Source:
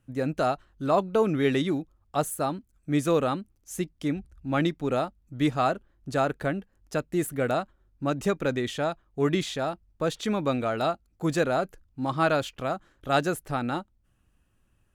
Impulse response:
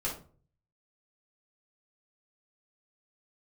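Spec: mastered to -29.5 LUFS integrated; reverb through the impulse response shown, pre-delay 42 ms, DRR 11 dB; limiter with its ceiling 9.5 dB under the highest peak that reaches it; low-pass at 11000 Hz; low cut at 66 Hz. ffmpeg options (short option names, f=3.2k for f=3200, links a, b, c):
-filter_complex "[0:a]highpass=66,lowpass=11k,alimiter=limit=-20dB:level=0:latency=1,asplit=2[a][b];[1:a]atrim=start_sample=2205,adelay=42[c];[b][c]afir=irnorm=-1:irlink=0,volume=-15.5dB[d];[a][d]amix=inputs=2:normalize=0,volume=1.5dB"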